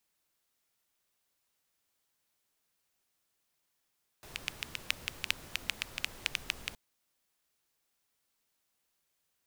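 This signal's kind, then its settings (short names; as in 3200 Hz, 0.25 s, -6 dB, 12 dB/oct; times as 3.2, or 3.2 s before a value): rain from filtered ticks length 2.52 s, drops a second 6.7, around 2600 Hz, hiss -9.5 dB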